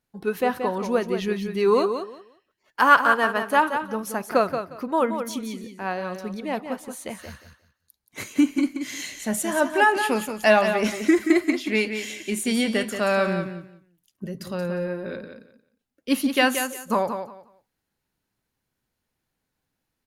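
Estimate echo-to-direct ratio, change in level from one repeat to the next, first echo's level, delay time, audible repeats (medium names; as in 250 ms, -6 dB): -8.0 dB, -14.0 dB, -8.0 dB, 178 ms, 2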